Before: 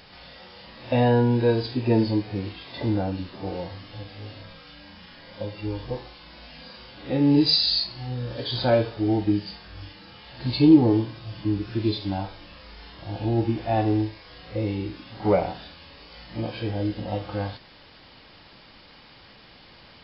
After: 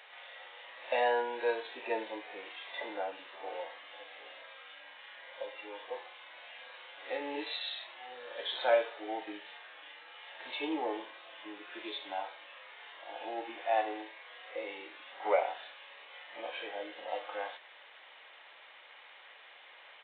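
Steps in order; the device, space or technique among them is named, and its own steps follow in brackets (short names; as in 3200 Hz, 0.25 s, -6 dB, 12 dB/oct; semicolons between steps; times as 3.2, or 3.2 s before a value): musical greeting card (downsampling 8000 Hz; HPF 540 Hz 24 dB/oct; bell 2000 Hz +5.5 dB 0.54 oct); gain -4 dB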